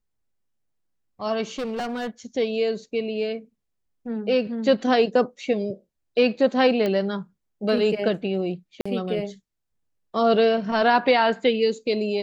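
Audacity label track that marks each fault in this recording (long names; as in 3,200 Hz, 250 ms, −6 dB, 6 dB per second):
1.580000	2.090000	clipping −25 dBFS
6.860000	6.860000	click −14 dBFS
8.810000	8.860000	drop-out 45 ms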